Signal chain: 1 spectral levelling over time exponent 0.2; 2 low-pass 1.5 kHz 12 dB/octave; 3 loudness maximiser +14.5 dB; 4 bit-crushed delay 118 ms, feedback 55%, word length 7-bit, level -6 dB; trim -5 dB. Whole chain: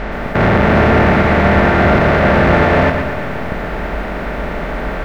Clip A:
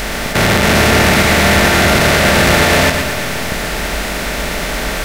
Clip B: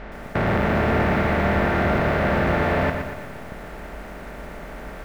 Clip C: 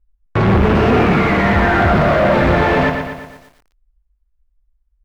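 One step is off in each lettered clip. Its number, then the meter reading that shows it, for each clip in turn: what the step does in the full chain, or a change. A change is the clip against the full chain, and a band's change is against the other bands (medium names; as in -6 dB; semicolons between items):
2, 4 kHz band +15.0 dB; 3, momentary loudness spread change +5 LU; 1, momentary loudness spread change -1 LU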